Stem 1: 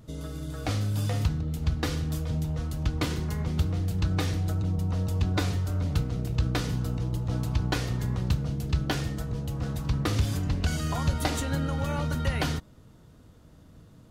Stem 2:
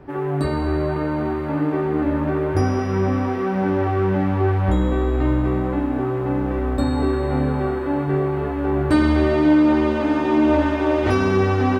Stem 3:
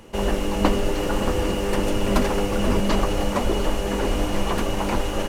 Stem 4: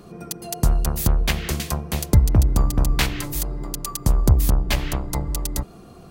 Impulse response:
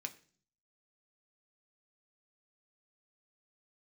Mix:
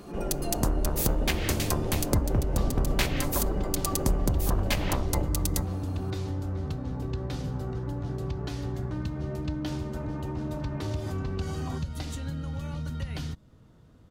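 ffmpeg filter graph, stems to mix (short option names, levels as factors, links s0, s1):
-filter_complex "[0:a]acrossover=split=250|3000[s0][s1][s2];[s1]acompressor=threshold=0.00447:ratio=2[s3];[s0][s3][s2]amix=inputs=3:normalize=0,adelay=750,volume=0.75[s4];[1:a]lowpass=1700,alimiter=limit=0.188:level=0:latency=1,volume=0.168[s5];[2:a]afwtdn=0.0891,alimiter=limit=0.2:level=0:latency=1:release=378,bandreject=f=50:t=h:w=6,bandreject=f=100:t=h:w=6,bandreject=f=150:t=h:w=6,bandreject=f=200:t=h:w=6,bandreject=f=250:t=h:w=6,bandreject=f=300:t=h:w=6,bandreject=f=350:t=h:w=6,bandreject=f=400:t=h:w=6,bandreject=f=450:t=h:w=6,bandreject=f=500:t=h:w=6,volume=0.75,asplit=2[s6][s7];[s7]volume=0.211[s8];[3:a]acompressor=threshold=0.0708:ratio=3,volume=0.75,asplit=2[s9][s10];[s10]volume=0.447[s11];[s4][s6]amix=inputs=2:normalize=0,highshelf=f=5700:g=-8.5,acompressor=threshold=0.0355:ratio=4,volume=1[s12];[4:a]atrim=start_sample=2205[s13];[s8][s11]amix=inputs=2:normalize=0[s14];[s14][s13]afir=irnorm=-1:irlink=0[s15];[s5][s9][s12][s15]amix=inputs=4:normalize=0"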